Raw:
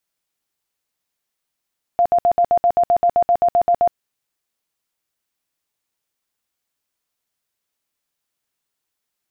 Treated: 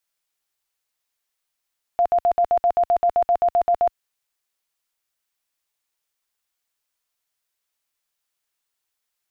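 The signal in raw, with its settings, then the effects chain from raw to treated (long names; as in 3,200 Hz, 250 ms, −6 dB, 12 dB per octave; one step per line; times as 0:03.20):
tone bursts 697 Hz, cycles 46, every 0.13 s, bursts 15, −11 dBFS
parametric band 180 Hz −10 dB 2.7 octaves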